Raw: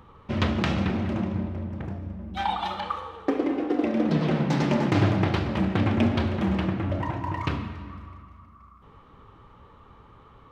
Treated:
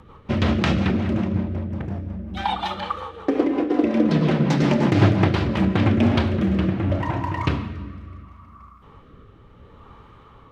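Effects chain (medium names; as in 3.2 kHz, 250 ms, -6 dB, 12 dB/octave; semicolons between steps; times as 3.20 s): 3.42–5.96 s: whistle 1 kHz -43 dBFS; rotary cabinet horn 5.5 Hz, later 0.7 Hz, at 5.48 s; trim +6.5 dB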